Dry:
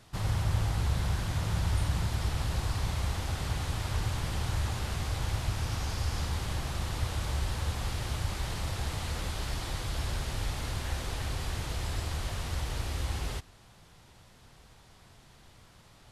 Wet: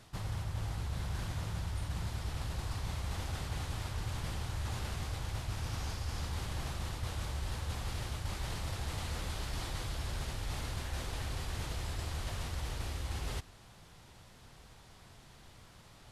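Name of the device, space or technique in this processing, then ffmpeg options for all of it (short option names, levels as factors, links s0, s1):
compression on the reversed sound: -af "areverse,acompressor=threshold=0.02:ratio=6,areverse"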